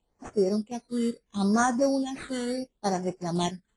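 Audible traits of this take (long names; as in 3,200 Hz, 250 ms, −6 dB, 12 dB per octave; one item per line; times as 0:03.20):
tremolo triangle 0.86 Hz, depth 40%
aliases and images of a low sample rate 5,100 Hz, jitter 0%
phaser sweep stages 8, 0.73 Hz, lowest notch 720–3,900 Hz
AAC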